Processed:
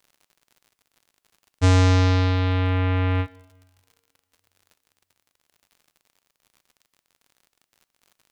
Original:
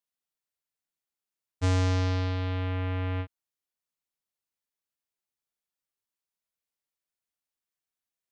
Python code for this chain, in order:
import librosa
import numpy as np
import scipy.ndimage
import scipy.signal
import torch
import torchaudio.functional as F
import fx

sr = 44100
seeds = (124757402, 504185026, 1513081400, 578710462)

y = fx.dmg_crackle(x, sr, seeds[0], per_s=70.0, level_db=-52.0)
y = fx.rev_double_slope(y, sr, seeds[1], early_s=0.92, late_s=3.3, knee_db=-24, drr_db=16.5)
y = y * librosa.db_to_amplitude(8.5)